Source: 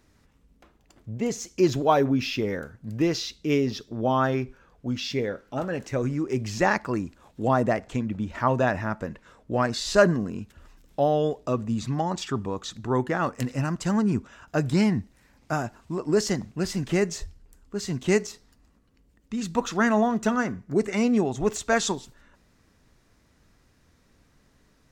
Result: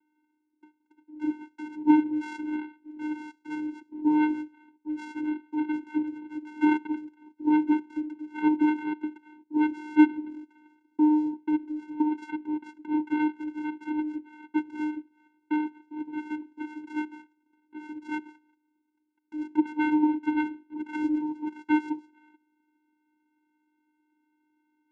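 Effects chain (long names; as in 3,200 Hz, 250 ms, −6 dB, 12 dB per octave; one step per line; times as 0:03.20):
stylus tracing distortion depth 0.15 ms
noise gate −56 dBFS, range −7 dB
in parallel at −0.5 dB: downward compressor, threshold −30 dBFS, peak gain reduction 16.5 dB
on the sum: single-sideband voice off tune −370 Hz 290–2,600 Hz
channel vocoder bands 4, square 304 Hz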